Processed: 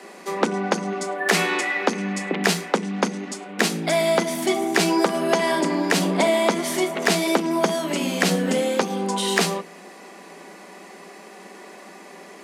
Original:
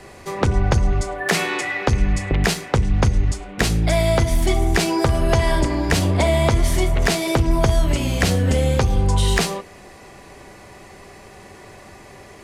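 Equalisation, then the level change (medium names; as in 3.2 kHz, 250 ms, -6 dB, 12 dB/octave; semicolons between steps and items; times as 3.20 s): Chebyshev high-pass 170 Hz, order 10; +1.0 dB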